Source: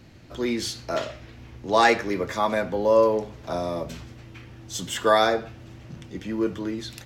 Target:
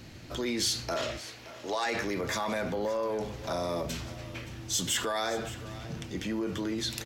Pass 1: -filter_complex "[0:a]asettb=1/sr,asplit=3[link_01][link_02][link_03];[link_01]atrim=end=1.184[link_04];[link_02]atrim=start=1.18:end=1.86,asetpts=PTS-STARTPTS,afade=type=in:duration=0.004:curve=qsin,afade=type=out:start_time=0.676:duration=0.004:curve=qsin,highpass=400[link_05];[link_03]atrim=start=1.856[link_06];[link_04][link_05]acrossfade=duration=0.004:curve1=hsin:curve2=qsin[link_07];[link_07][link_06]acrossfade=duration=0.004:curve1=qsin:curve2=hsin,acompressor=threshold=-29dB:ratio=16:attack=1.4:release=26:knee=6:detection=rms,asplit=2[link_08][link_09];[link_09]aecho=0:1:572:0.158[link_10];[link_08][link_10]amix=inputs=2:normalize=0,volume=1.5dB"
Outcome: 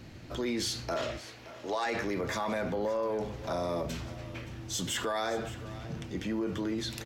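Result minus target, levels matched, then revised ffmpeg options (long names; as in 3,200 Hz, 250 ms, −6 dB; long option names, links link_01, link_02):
4,000 Hz band −2.5 dB
-filter_complex "[0:a]asettb=1/sr,asplit=3[link_01][link_02][link_03];[link_01]atrim=end=1.184[link_04];[link_02]atrim=start=1.18:end=1.86,asetpts=PTS-STARTPTS,afade=type=in:duration=0.004:curve=qsin,afade=type=out:start_time=0.676:duration=0.004:curve=qsin,highpass=400[link_05];[link_03]atrim=start=1.856[link_06];[link_04][link_05]acrossfade=duration=0.004:curve1=hsin:curve2=qsin[link_07];[link_07][link_06]acrossfade=duration=0.004:curve1=qsin:curve2=hsin,acompressor=threshold=-29dB:ratio=16:attack=1.4:release=26:knee=6:detection=rms,highshelf=frequency=2700:gain=6.5,asplit=2[link_08][link_09];[link_09]aecho=0:1:572:0.158[link_10];[link_08][link_10]amix=inputs=2:normalize=0,volume=1.5dB"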